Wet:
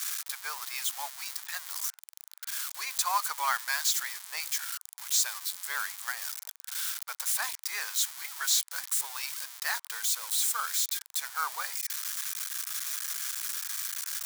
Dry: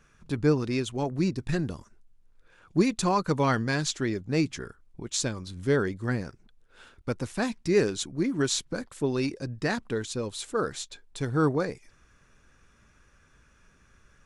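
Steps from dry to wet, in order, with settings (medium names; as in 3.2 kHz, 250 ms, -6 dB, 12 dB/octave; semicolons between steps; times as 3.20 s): zero-crossing glitches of -22.5 dBFS; steep high-pass 860 Hz 36 dB/octave; peaking EQ 2.7 kHz -5 dB 0.23 oct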